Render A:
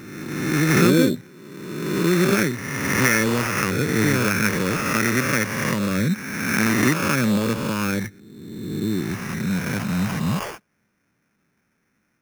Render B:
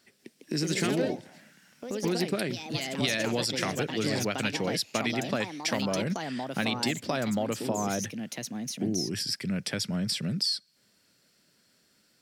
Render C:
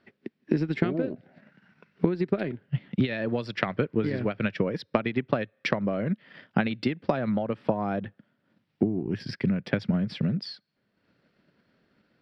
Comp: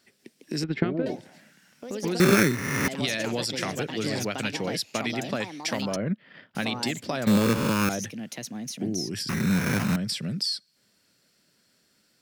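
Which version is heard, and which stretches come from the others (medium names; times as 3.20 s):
B
0.64–1.06 s: from C
2.20–2.88 s: from A
5.96–6.55 s: from C
7.27–7.89 s: from A
9.29–9.96 s: from A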